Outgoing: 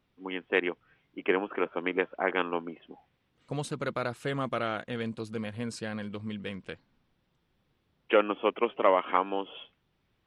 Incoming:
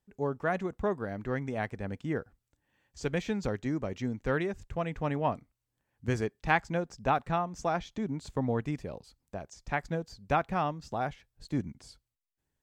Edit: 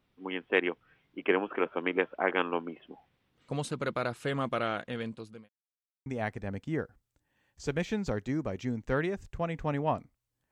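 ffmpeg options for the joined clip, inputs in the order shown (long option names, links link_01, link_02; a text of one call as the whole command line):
ffmpeg -i cue0.wav -i cue1.wav -filter_complex "[0:a]apad=whole_dur=10.51,atrim=end=10.51,asplit=2[link_01][link_02];[link_01]atrim=end=5.49,asetpts=PTS-STARTPTS,afade=type=out:start_time=4.62:duration=0.87:curve=qsin[link_03];[link_02]atrim=start=5.49:end=6.06,asetpts=PTS-STARTPTS,volume=0[link_04];[1:a]atrim=start=1.43:end=5.88,asetpts=PTS-STARTPTS,afade=type=in:duration=0.004:curve=hsin[link_05];[link_03][link_04][link_05]concat=n=3:v=0:a=1" out.wav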